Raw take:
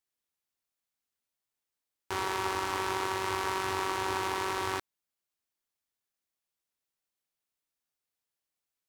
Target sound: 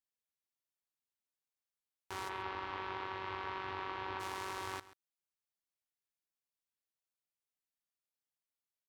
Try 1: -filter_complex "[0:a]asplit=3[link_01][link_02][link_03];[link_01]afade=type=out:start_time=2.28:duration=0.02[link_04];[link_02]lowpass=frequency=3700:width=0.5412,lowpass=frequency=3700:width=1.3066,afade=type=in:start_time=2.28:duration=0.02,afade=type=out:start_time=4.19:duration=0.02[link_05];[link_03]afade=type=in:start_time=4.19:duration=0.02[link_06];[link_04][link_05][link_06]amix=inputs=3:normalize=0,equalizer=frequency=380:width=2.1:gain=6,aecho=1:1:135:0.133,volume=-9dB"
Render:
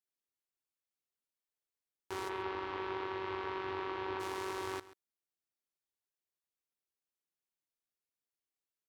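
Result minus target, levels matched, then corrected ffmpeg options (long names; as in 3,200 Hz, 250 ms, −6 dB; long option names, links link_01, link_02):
500 Hz band +5.5 dB
-filter_complex "[0:a]asplit=3[link_01][link_02][link_03];[link_01]afade=type=out:start_time=2.28:duration=0.02[link_04];[link_02]lowpass=frequency=3700:width=0.5412,lowpass=frequency=3700:width=1.3066,afade=type=in:start_time=2.28:duration=0.02,afade=type=out:start_time=4.19:duration=0.02[link_05];[link_03]afade=type=in:start_time=4.19:duration=0.02[link_06];[link_04][link_05][link_06]amix=inputs=3:normalize=0,equalizer=frequency=380:width=2.1:gain=-2.5,aecho=1:1:135:0.133,volume=-9dB"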